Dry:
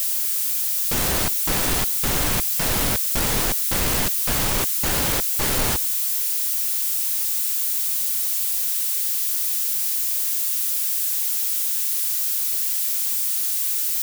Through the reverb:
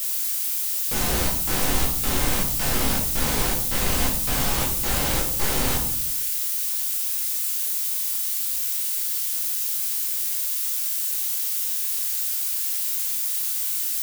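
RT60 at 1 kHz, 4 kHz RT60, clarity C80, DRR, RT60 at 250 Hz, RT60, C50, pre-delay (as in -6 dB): 0.60 s, 0.45 s, 10.0 dB, -2.5 dB, 1.0 s, 0.65 s, 6.0 dB, 14 ms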